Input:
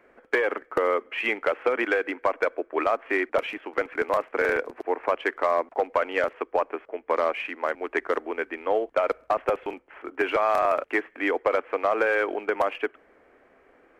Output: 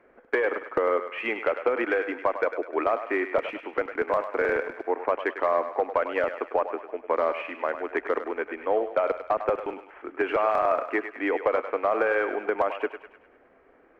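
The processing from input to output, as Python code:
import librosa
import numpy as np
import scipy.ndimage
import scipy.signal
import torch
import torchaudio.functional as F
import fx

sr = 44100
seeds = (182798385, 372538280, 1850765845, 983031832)

p1 = fx.lowpass(x, sr, hz=1700.0, slope=6)
y = p1 + fx.echo_thinned(p1, sr, ms=101, feedback_pct=53, hz=600.0, wet_db=-8.5, dry=0)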